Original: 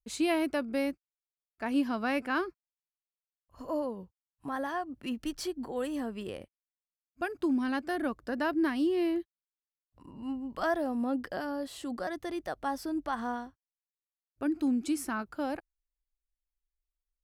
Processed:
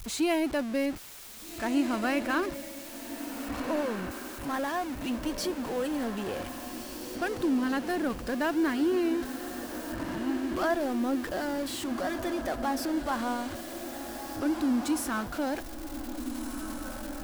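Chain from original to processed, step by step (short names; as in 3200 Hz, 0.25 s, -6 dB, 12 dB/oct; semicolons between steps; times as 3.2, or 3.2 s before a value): zero-crossing step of -34.5 dBFS; diffused feedback echo 1.655 s, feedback 41%, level -8 dB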